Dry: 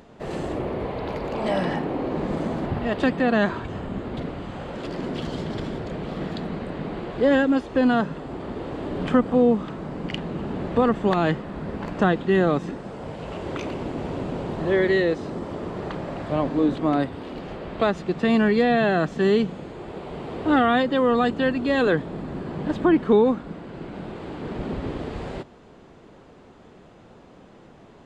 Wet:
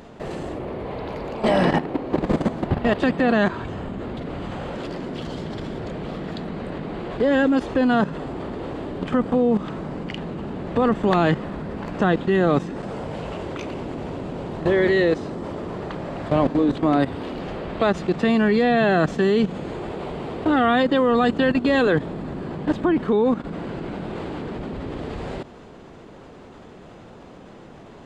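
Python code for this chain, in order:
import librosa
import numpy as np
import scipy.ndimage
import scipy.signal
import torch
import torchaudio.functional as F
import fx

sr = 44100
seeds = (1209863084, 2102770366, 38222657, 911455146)

y = fx.level_steps(x, sr, step_db=13)
y = F.gain(torch.from_numpy(y), 8.5).numpy()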